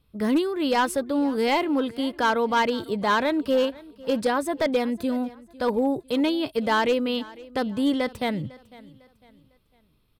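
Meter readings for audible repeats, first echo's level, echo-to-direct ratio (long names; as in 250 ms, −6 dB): 2, −21.0 dB, −20.5 dB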